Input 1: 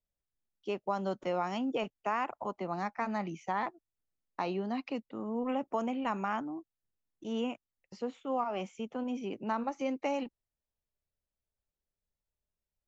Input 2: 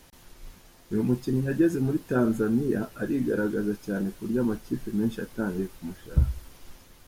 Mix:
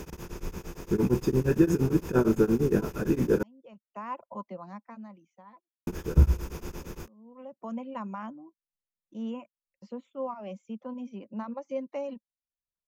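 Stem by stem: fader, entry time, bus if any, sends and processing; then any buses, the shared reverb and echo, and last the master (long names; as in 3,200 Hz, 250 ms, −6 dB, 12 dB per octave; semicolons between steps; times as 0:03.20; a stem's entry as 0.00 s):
−9.5 dB, 1.90 s, no send, hollow resonant body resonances 210/540/1,000 Hz, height 13 dB, ringing for 45 ms; reverb reduction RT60 0.59 s; automatic ducking −23 dB, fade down 1.40 s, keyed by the second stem
+0.5 dB, 0.00 s, muted 0:03.43–0:05.87, no send, compressor on every frequency bin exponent 0.6; EQ curve with evenly spaced ripples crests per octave 0.77, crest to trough 8 dB; tremolo along a rectified sine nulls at 8.7 Hz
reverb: not used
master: no processing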